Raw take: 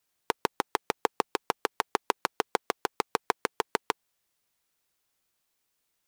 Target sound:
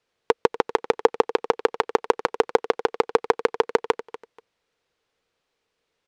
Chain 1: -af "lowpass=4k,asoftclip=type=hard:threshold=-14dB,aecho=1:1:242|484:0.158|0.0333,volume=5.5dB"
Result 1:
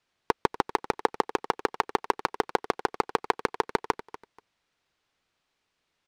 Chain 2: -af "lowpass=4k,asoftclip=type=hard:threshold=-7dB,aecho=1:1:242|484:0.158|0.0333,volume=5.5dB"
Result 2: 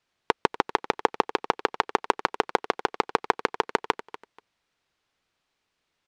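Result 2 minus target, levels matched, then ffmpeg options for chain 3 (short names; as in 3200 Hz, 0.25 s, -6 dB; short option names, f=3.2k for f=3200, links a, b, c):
500 Hz band -4.5 dB
-af "lowpass=4k,equalizer=f=470:t=o:w=0.44:g=11,asoftclip=type=hard:threshold=-7dB,aecho=1:1:242|484:0.158|0.0333,volume=5.5dB"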